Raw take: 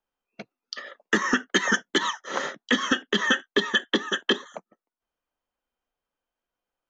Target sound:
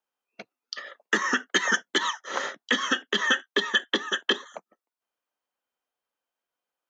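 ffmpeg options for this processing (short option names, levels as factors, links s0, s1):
-af "highpass=f=460:p=1"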